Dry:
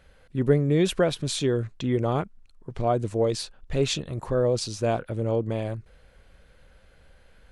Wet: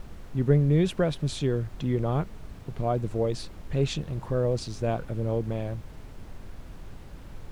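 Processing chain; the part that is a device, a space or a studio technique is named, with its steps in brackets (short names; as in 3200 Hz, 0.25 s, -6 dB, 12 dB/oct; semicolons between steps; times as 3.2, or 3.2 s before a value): car interior (bell 150 Hz +7 dB; high shelf 4800 Hz -7 dB; brown noise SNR 11 dB); gain -4 dB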